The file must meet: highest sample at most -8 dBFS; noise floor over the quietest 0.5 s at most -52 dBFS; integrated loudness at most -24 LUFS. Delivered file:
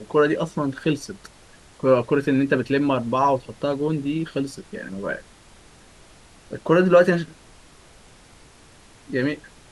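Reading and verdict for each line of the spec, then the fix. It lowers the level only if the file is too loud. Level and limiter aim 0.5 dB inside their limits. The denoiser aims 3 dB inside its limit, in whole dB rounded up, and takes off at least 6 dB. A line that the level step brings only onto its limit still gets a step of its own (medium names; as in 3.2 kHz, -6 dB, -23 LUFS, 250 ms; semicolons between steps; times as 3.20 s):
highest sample -4.5 dBFS: fail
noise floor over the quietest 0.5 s -50 dBFS: fail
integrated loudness -22.0 LUFS: fail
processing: trim -2.5 dB; peak limiter -8.5 dBFS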